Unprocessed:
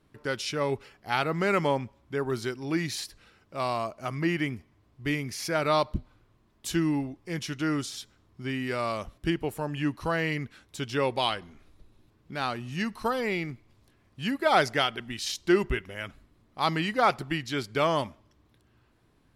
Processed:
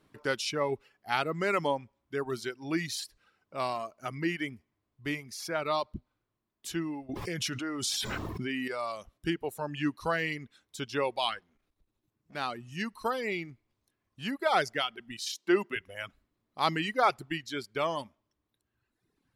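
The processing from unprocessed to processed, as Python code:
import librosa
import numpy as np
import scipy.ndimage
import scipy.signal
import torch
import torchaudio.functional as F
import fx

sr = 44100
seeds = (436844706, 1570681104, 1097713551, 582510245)

y = fx.env_flatten(x, sr, amount_pct=100, at=(7.09, 8.68))
y = fx.tube_stage(y, sr, drive_db=47.0, bias=0.55, at=(11.39, 12.35))
y = fx.highpass(y, sr, hz=200.0, slope=24, at=(15.26, 15.76))
y = fx.rider(y, sr, range_db=10, speed_s=2.0)
y = fx.dereverb_blind(y, sr, rt60_s=1.4)
y = fx.low_shelf(y, sr, hz=110.0, db=-10.5)
y = y * 10.0 ** (-3.0 / 20.0)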